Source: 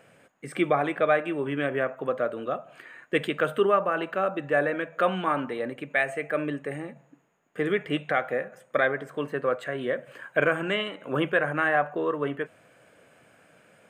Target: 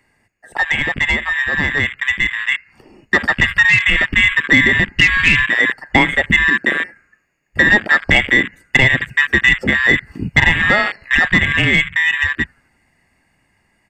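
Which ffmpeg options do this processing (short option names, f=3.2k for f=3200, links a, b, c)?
-filter_complex "[0:a]afftfilt=real='real(if(lt(b,272),68*(eq(floor(b/68),0)*1+eq(floor(b/68),1)*0+eq(floor(b/68),2)*3+eq(floor(b/68),3)*2)+mod(b,68),b),0)':imag='imag(if(lt(b,272),68*(eq(floor(b/68),0)*1+eq(floor(b/68),1)*0+eq(floor(b/68),2)*3+eq(floor(b/68),3)*2)+mod(b,68),b),0)':win_size=2048:overlap=0.75,highshelf=f=2.3k:g=-11,asplit=2[a][b];[b]asplit=4[c][d][e][f];[c]adelay=83,afreqshift=-130,volume=-22.5dB[g];[d]adelay=166,afreqshift=-260,volume=-28dB[h];[e]adelay=249,afreqshift=-390,volume=-33.5dB[i];[f]adelay=332,afreqshift=-520,volume=-39dB[j];[g][h][i][j]amix=inputs=4:normalize=0[k];[a][k]amix=inputs=2:normalize=0,afwtdn=0.0178,bass=f=250:g=2,treble=f=4k:g=9,acrossover=split=290|730[l][m][n];[l]acompressor=threshold=-39dB:ratio=4[o];[m]acompressor=threshold=-47dB:ratio=4[p];[n]acompressor=threshold=-29dB:ratio=4[q];[o][p][q]amix=inputs=3:normalize=0,aeval=exprs='0.178*sin(PI/2*1.58*val(0)/0.178)':c=same,dynaudnorm=f=290:g=21:m=6dB,volume=7.5dB"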